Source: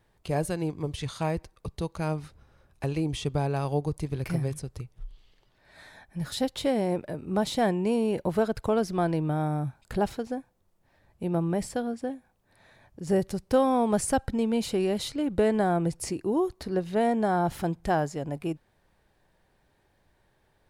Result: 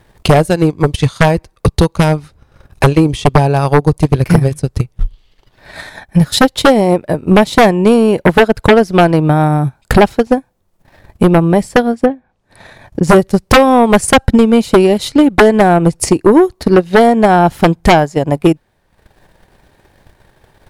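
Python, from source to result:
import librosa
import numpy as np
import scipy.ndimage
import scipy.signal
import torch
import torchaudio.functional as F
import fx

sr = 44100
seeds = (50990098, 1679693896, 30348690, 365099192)

y = fx.transient(x, sr, attack_db=11, sustain_db=-10)
y = fx.env_lowpass_down(y, sr, base_hz=2300.0, full_db=-30.0, at=(12.05, 13.02), fade=0.02)
y = fx.fold_sine(y, sr, drive_db=15, ceiling_db=0.0)
y = y * 10.0 ** (-1.5 / 20.0)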